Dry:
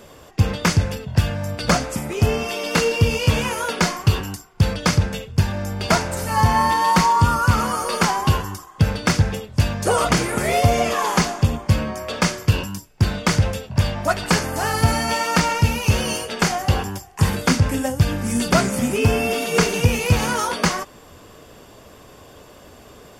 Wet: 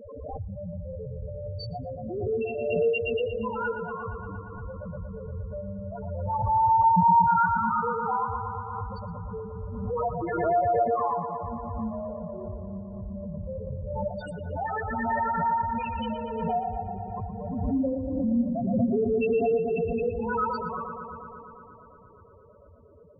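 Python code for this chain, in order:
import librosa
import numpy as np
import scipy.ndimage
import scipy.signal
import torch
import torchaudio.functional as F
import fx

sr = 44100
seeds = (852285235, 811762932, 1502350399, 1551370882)

p1 = fx.auto_swell(x, sr, attack_ms=166.0)
p2 = fx.hum_notches(p1, sr, base_hz=50, count=8)
p3 = fx.level_steps(p2, sr, step_db=13)
p4 = p2 + F.gain(torch.from_numpy(p3), 2.0).numpy()
p5 = fx.spec_topn(p4, sr, count=2)
p6 = p5 + fx.echo_bbd(p5, sr, ms=117, stages=2048, feedback_pct=80, wet_db=-7.5, dry=0)
p7 = fx.pre_swell(p6, sr, db_per_s=34.0)
y = F.gain(torch.from_numpy(p7), -5.0).numpy()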